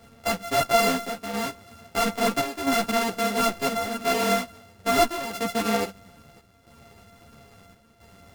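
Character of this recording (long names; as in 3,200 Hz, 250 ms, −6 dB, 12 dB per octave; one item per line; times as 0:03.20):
a buzz of ramps at a fixed pitch in blocks of 64 samples
chopped level 0.75 Hz, depth 60%, duty 80%
a shimmering, thickened sound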